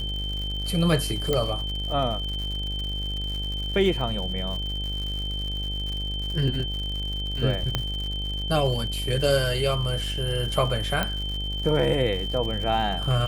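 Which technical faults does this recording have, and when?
buzz 50 Hz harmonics 17 -31 dBFS
crackle 130/s -32 dBFS
tone 3100 Hz -31 dBFS
1.33 pop -11 dBFS
7.75 pop -10 dBFS
11.03 pop -10 dBFS

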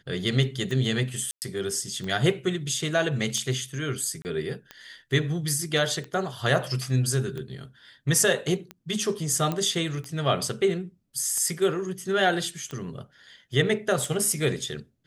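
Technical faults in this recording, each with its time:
tick 45 rpm -22 dBFS
1.31–1.42 gap 0.109 s
4.22–4.25 gap 29 ms
9.52 pop -15 dBFS

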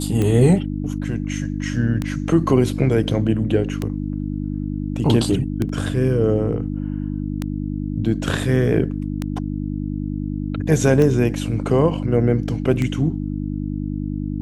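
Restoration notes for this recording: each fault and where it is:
hum 50 Hz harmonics 6 -25 dBFS
tick 33 1/3 rpm -10 dBFS
5.69 gap 3.2 ms

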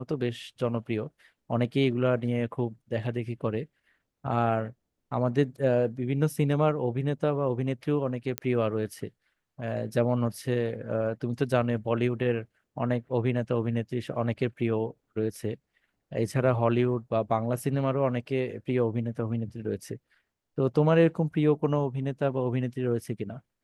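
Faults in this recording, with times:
8.38 pop -11 dBFS

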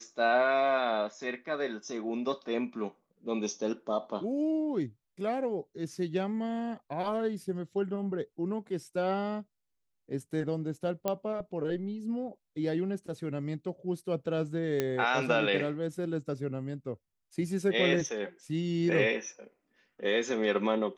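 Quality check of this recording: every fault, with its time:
11.08 pop -16 dBFS
14.8 pop -15 dBFS

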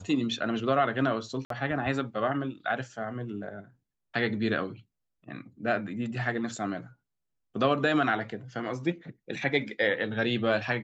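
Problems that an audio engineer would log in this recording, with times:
1.45–1.5 gap 53 ms

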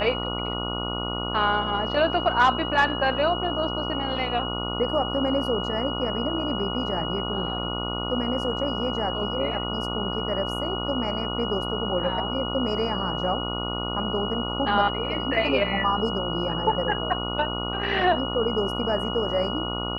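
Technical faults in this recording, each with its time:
buzz 60 Hz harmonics 24 -31 dBFS
tone 2900 Hz -31 dBFS

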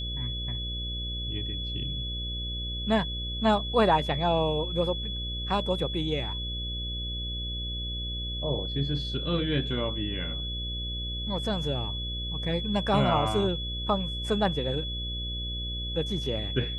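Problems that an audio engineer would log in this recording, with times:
buzz 60 Hz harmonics 10 -35 dBFS
tone 3400 Hz -34 dBFS

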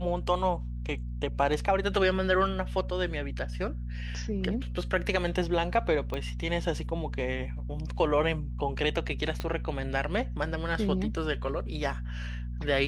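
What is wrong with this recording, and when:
hum 60 Hz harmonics 4 -35 dBFS
6.14 pop -21 dBFS
9.4 pop -18 dBFS

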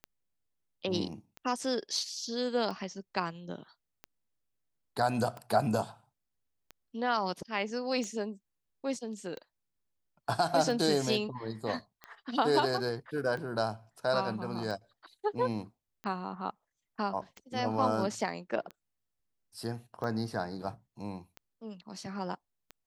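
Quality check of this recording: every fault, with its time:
tick 45 rpm -28 dBFS

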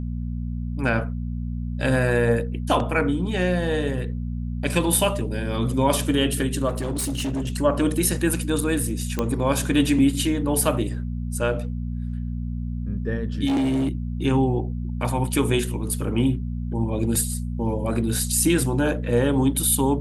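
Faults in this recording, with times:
hum 60 Hz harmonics 4 -28 dBFS
6.68–7.52 clipped -22.5 dBFS
9.19 pop -10 dBFS
13.46–13.89 clipped -19 dBFS

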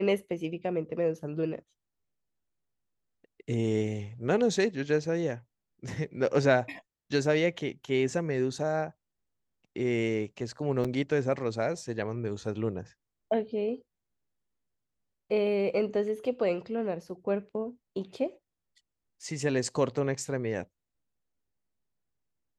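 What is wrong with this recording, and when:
10.84–10.85 gap 5.8 ms

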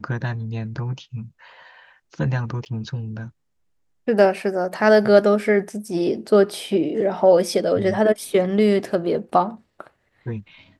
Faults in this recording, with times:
2.65–2.66 gap 9.6 ms

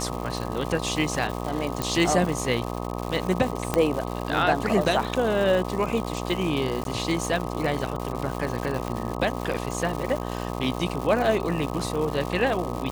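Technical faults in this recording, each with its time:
buzz 60 Hz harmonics 21 -31 dBFS
crackle 260/s -29 dBFS
1.82 pop -10 dBFS
3.74 pop -8 dBFS
6.84–6.85 gap 12 ms
8.88 pop -17 dBFS

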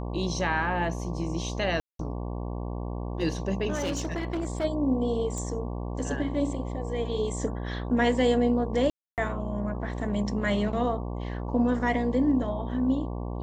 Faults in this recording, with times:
buzz 60 Hz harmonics 19 -33 dBFS
1.8–1.99 gap 0.193 s
3.74–4.65 clipped -25.5 dBFS
5.38 pop -24 dBFS
8.9–9.18 gap 0.278 s

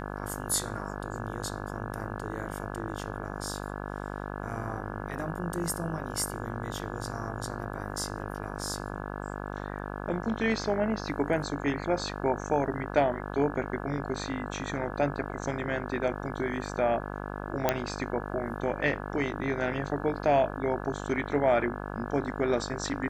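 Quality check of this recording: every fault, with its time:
buzz 50 Hz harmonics 34 -37 dBFS
17.69 pop -9 dBFS

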